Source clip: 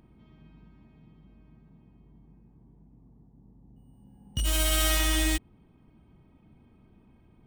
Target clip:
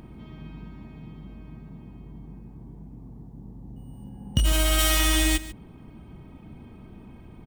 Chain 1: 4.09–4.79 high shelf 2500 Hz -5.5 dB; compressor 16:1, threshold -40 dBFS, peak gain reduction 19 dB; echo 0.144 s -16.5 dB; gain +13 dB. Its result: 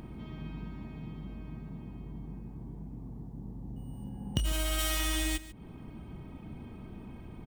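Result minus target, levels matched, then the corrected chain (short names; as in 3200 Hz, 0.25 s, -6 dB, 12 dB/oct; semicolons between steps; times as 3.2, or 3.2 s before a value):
compressor: peak gain reduction +9.5 dB
4.09–4.79 high shelf 2500 Hz -5.5 dB; compressor 16:1, threshold -30 dBFS, peak gain reduction 10 dB; echo 0.144 s -16.5 dB; gain +13 dB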